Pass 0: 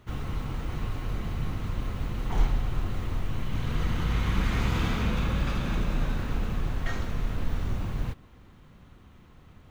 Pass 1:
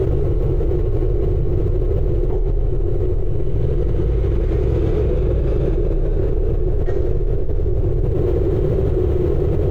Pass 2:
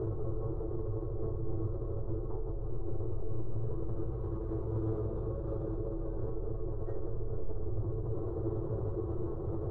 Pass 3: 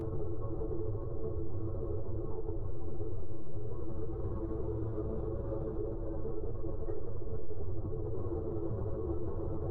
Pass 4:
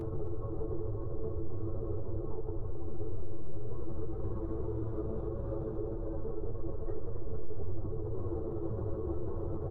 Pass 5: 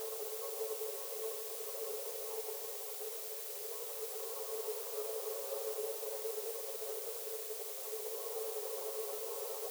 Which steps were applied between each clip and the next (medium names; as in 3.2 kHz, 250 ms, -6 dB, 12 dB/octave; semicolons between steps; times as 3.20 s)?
FFT filter 140 Hz 0 dB, 240 Hz -17 dB, 370 Hz +14 dB, 990 Hz -16 dB, 3.5 kHz -20 dB; level flattener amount 100%
resonant high shelf 1.6 kHz -12.5 dB, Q 3; peak limiter -14 dBFS, peak gain reduction 8 dB; feedback comb 110 Hz, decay 0.16 s, harmonics all, mix 90%; trim -6.5 dB
upward compressor, threshold -49 dBFS; peak limiter -34.5 dBFS, peak gain reduction 11.5 dB; three-phase chorus; trim +8.5 dB
delay 263 ms -11 dB
added noise blue -45 dBFS; brick-wall FIR high-pass 400 Hz; on a send at -8.5 dB: reverberation RT60 2.3 s, pre-delay 72 ms